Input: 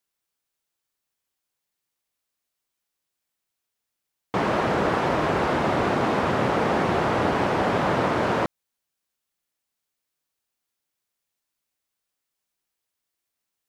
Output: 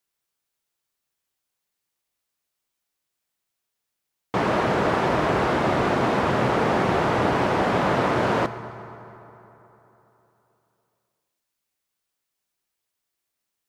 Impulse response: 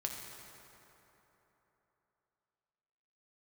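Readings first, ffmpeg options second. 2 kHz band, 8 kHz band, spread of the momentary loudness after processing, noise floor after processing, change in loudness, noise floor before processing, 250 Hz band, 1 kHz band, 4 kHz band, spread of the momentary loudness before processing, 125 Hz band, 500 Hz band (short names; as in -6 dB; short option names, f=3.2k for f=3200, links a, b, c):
+1.0 dB, +1.0 dB, 8 LU, -82 dBFS, +1.0 dB, -83 dBFS, +1.0 dB, +1.0 dB, +1.0 dB, 2 LU, +2.0 dB, +1.0 dB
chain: -filter_complex "[0:a]asplit=2[a][b];[1:a]atrim=start_sample=2205[c];[b][c]afir=irnorm=-1:irlink=0,volume=-6.5dB[d];[a][d]amix=inputs=2:normalize=0,volume=-2dB"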